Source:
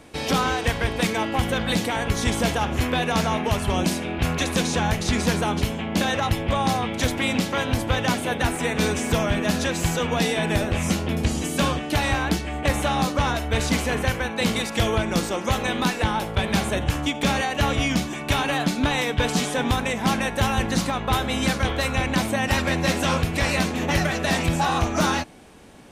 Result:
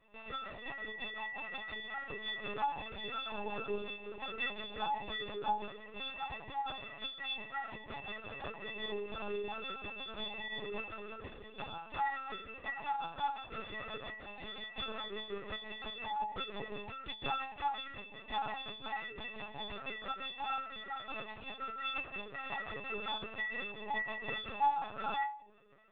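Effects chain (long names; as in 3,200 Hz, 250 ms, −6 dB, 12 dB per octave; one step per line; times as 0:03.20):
stiff-string resonator 400 Hz, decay 0.59 s, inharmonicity 0.03
linear-prediction vocoder at 8 kHz pitch kept
level +4 dB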